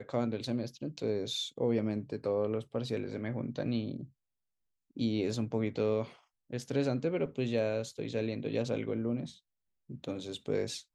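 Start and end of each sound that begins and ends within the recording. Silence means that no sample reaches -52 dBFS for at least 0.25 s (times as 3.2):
4.97–6.16
6.5–9.38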